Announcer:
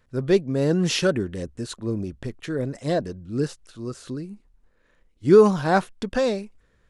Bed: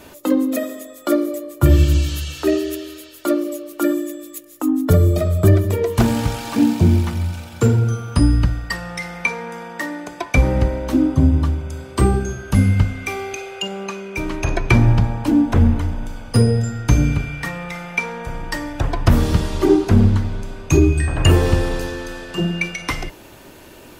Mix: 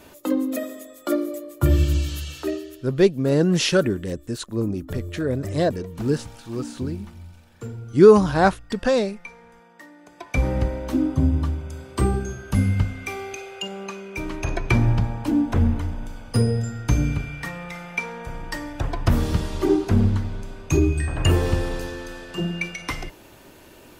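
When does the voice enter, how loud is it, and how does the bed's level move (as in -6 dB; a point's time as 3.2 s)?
2.70 s, +2.5 dB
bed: 2.36 s -5.5 dB
2.88 s -19.5 dB
9.96 s -19.5 dB
10.45 s -5.5 dB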